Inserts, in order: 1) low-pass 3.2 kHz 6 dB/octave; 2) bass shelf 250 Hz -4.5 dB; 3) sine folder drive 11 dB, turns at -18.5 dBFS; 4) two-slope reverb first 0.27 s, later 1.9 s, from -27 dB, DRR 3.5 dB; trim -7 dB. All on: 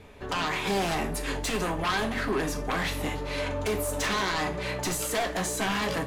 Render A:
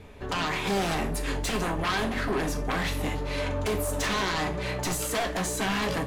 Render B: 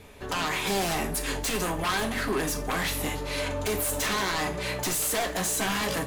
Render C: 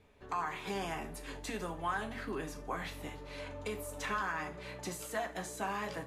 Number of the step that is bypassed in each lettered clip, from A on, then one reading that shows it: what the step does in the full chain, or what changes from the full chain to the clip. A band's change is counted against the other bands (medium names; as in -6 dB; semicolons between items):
2, 125 Hz band +2.5 dB; 1, 8 kHz band +5.0 dB; 3, distortion -3 dB